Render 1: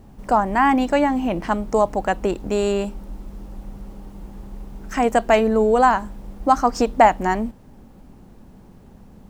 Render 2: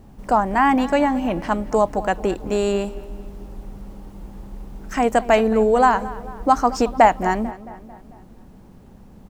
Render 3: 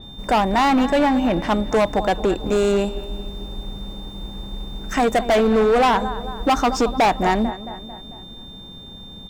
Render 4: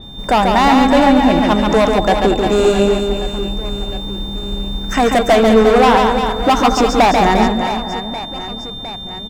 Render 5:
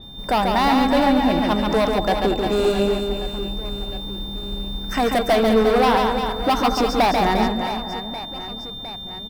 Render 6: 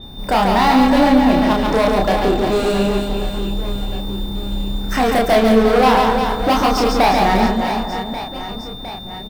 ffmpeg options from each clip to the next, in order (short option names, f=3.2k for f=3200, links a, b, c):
-filter_complex "[0:a]asplit=2[a][b];[b]adelay=222,lowpass=f=3.2k:p=1,volume=-17dB,asplit=2[c][d];[d]adelay=222,lowpass=f=3.2k:p=1,volume=0.55,asplit=2[e][f];[f]adelay=222,lowpass=f=3.2k:p=1,volume=0.55,asplit=2[g][h];[h]adelay=222,lowpass=f=3.2k:p=1,volume=0.55,asplit=2[i][j];[j]adelay=222,lowpass=f=3.2k:p=1,volume=0.55[k];[a][c][e][g][i][k]amix=inputs=6:normalize=0"
-af "aeval=exprs='val(0)+0.00708*sin(2*PI*3600*n/s)':c=same,asoftclip=type=hard:threshold=-17dB,adynamicequalizer=threshold=0.00794:dfrequency=5500:dqfactor=0.7:tfrequency=5500:tqfactor=0.7:attack=5:release=100:ratio=0.375:range=2:mode=cutabove:tftype=highshelf,volume=4dB"
-af "aecho=1:1:140|350|665|1138|1846:0.631|0.398|0.251|0.158|0.1,volume=4.5dB"
-af "aexciter=amount=1.3:drive=3.7:freq=3.9k,volume=-6.5dB"
-filter_complex "[0:a]asplit=2[a][b];[b]asoftclip=type=hard:threshold=-23.5dB,volume=-4dB[c];[a][c]amix=inputs=2:normalize=0,asplit=2[d][e];[e]adelay=31,volume=-2.5dB[f];[d][f]amix=inputs=2:normalize=0"